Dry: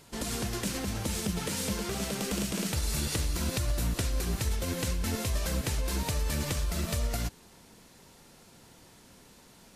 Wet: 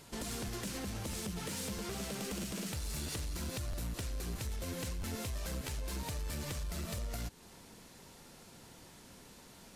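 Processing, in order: compression 2:1, threshold -39 dBFS, peak gain reduction 8 dB; saturation -32.5 dBFS, distortion -17 dB; crackling interface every 0.65 s, samples 512, repeat, from 0.46 s

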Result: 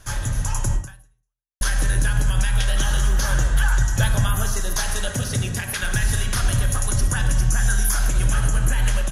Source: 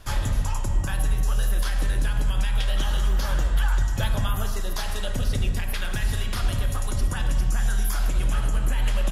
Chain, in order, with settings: graphic EQ with 31 bands 125 Hz +9 dB, 1.6 kHz +7 dB, 6.3 kHz +11 dB, 10 kHz +11 dB; level rider gain up to 5.5 dB; 0.74–1.61 s: fade out exponential; 5.09–5.83 s: high-pass 95 Hz 12 dB/octave; trim -2.5 dB

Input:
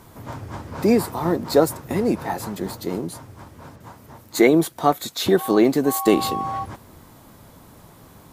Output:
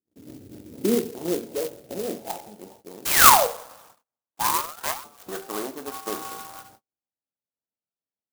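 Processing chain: local Wiener filter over 41 samples; 1.42–1.83 s: overload inside the chain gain 23.5 dB; 3.05–3.47 s: painted sound fall 450–3300 Hz -10 dBFS; two-slope reverb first 0.46 s, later 1.7 s, from -22 dB, DRR 5 dB; 4.38–5.03 s: ring modulator 460 Hz -> 1.8 kHz; band-pass sweep 320 Hz -> 1.2 kHz, 0.84–3.34 s; gate -52 dBFS, range -36 dB; sampling jitter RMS 0.11 ms

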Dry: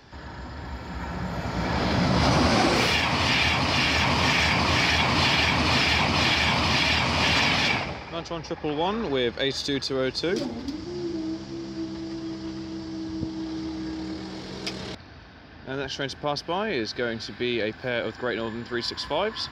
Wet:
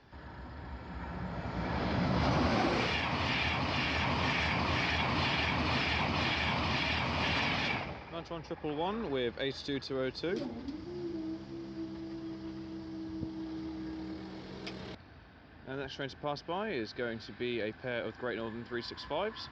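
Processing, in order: distance through air 150 m; trim -8 dB

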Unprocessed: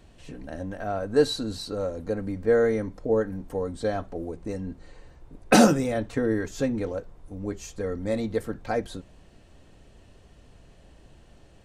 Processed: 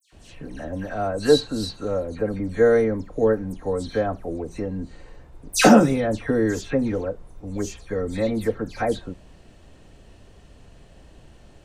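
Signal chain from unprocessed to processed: phase dispersion lows, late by 126 ms, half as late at 2.9 kHz; trim +4 dB

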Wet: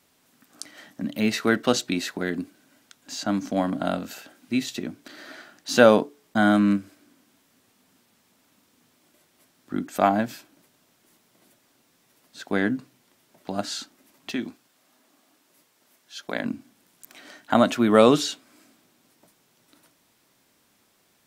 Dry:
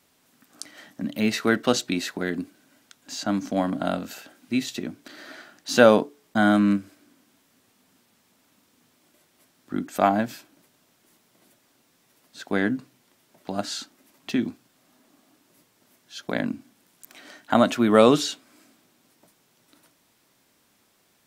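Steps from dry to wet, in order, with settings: 14.31–16.45 s: bass shelf 260 Hz -11 dB

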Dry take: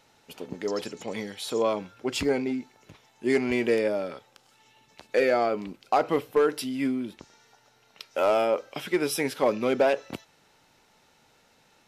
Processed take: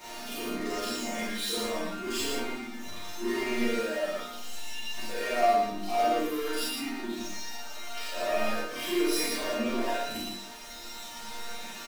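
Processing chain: short-time spectra conjugated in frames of 108 ms; reverb removal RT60 1.8 s; hum notches 50/100/150/200/250/300 Hz; in parallel at +2 dB: compressor with a negative ratio -30 dBFS; on the sum: power-law waveshaper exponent 0.35; chord resonator A#3 sus4, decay 0.25 s; on a send: delay 115 ms -4 dB; on the sum: Schroeder reverb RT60 0.32 s, combs from 29 ms, DRR -3.5 dB; trim -2.5 dB

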